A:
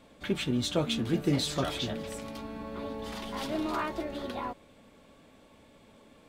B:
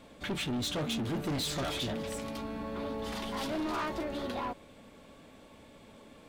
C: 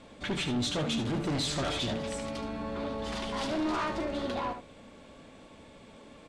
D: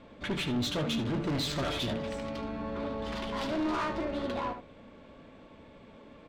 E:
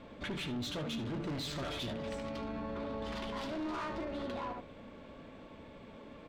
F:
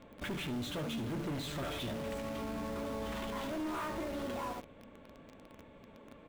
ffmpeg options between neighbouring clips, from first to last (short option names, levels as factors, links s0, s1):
-af "asoftclip=type=tanh:threshold=0.0224,volume=1.41"
-filter_complex "[0:a]lowpass=f=9100:w=0.5412,lowpass=f=9100:w=1.3066,asplit=2[s0][s1];[s1]aecho=0:1:74:0.355[s2];[s0][s2]amix=inputs=2:normalize=0,volume=1.26"
-af "bandreject=f=770:w=12,adynamicsmooth=sensitivity=6.5:basefreq=3500"
-af "alimiter=level_in=3.16:limit=0.0631:level=0:latency=1:release=68,volume=0.316,volume=1.12"
-filter_complex "[0:a]equalizer=f=4900:w=2.2:g=-9.5,asplit=2[s0][s1];[s1]acrusher=bits=6:mix=0:aa=0.000001,volume=0.708[s2];[s0][s2]amix=inputs=2:normalize=0,volume=0.631"